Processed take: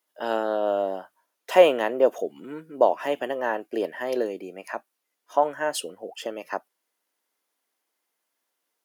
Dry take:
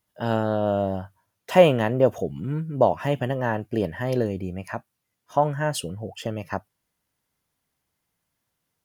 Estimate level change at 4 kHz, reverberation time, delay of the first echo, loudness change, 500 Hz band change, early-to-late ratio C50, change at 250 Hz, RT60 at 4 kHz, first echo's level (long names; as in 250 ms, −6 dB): 0.0 dB, no reverb audible, no echo audible, −0.5 dB, 0.0 dB, no reverb audible, −6.5 dB, no reverb audible, no echo audible